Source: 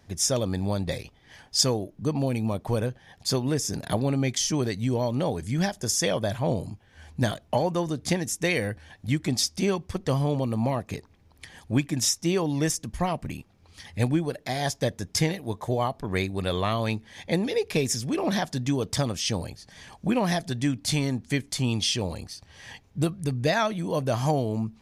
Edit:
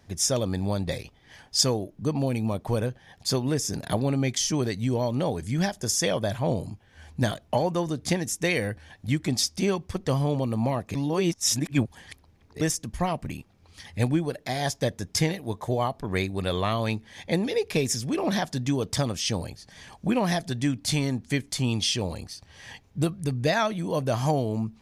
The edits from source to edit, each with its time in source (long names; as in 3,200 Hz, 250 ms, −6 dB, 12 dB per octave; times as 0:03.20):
0:10.95–0:12.61: reverse